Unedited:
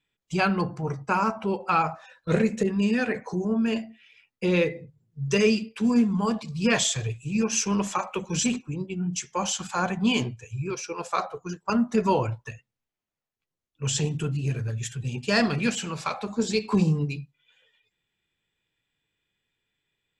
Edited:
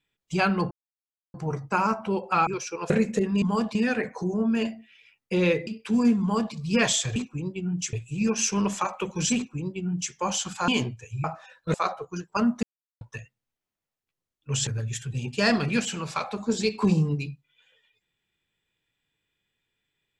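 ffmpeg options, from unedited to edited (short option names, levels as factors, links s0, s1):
-filter_complex "[0:a]asplit=15[s0][s1][s2][s3][s4][s5][s6][s7][s8][s9][s10][s11][s12][s13][s14];[s0]atrim=end=0.71,asetpts=PTS-STARTPTS,afade=t=out:st=0.706:d=0.004:c=hsin,apad=pad_dur=0.63[s15];[s1]atrim=start=0.71:end=1.842,asetpts=PTS-STARTPTS,afade=t=in:d=0.004:c=hsin[s16];[s2]atrim=start=10.638:end=11.072[s17];[s3]atrim=start=2.338:end=2.862[s18];[s4]atrim=start=6.118:end=6.452[s19];[s5]atrim=start=2.858:end=4.782[s20];[s6]atrim=start=5.578:end=7.072[s21];[s7]atrim=start=8.498:end=9.272[s22];[s8]atrim=start=7.068:end=9.822[s23];[s9]atrim=start=10.078:end=10.642[s24];[s10]atrim=start=1.838:end=2.342[s25];[s11]atrim=start=11.068:end=11.96,asetpts=PTS-STARTPTS,afade=t=out:st=0.888:d=0.004:c=hsin[s26];[s12]atrim=start=11.96:end=12.34,asetpts=PTS-STARTPTS,volume=0[s27];[s13]atrim=start=12.34:end=14.002,asetpts=PTS-STARTPTS,afade=t=in:d=0.004:c=hsin[s28];[s14]atrim=start=14.568[s29];[s15][s16]concat=n=2:v=0:a=1[s30];[s30][s17]acrossfade=d=0.004:c1=hsin:c2=hsin[s31];[s31][s18]acrossfade=d=0.004:c1=hsin:c2=hsin[s32];[s32][s19]acrossfade=d=0.004:c1=hsin:c2=hsin[s33];[s33][s20]acrossfade=d=0.004:c1=hsin:c2=hsin[s34];[s34][s21]acrossfade=d=0.004:c1=hsin:c2=hsin[s35];[s35][s22]acrossfade=d=0.004:c1=hsin:c2=hsin[s36];[s36][s23]acrossfade=d=0.004:c1=hsin:c2=hsin[s37];[s37][s24]acrossfade=d=0.004:c1=hsin:c2=hsin[s38];[s38][s25]acrossfade=d=0.004:c1=hsin:c2=hsin[s39];[s26][s27][s28]concat=n=3:v=0:a=1[s40];[s39][s40]acrossfade=d=0.004:c1=hsin:c2=hsin[s41];[s41][s29]acrossfade=d=0.004:c1=hsin:c2=hsin"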